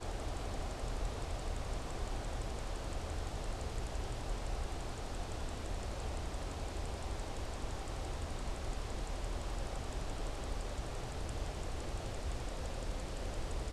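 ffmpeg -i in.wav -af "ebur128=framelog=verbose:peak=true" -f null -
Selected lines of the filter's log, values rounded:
Integrated loudness:
  I:         -42.5 LUFS
  Threshold: -52.5 LUFS
Loudness range:
  LRA:         0.6 LU
  Threshold: -62.5 LUFS
  LRA low:   -42.7 LUFS
  LRA high:  -42.2 LUFS
True peak:
  Peak:      -26.5 dBFS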